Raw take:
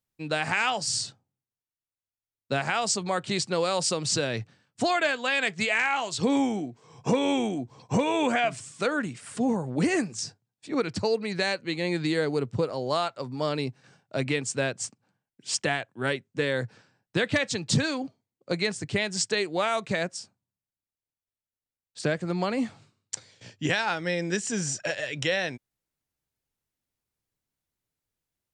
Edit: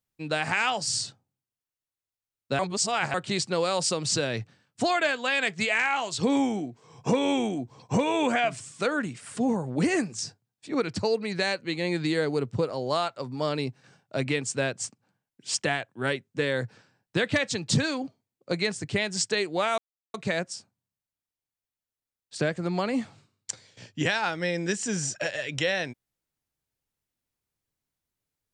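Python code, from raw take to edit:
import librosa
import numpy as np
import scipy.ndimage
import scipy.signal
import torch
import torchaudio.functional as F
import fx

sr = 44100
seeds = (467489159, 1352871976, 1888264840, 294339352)

y = fx.edit(x, sr, fx.reverse_span(start_s=2.59, length_s=0.55),
    fx.insert_silence(at_s=19.78, length_s=0.36), tone=tone)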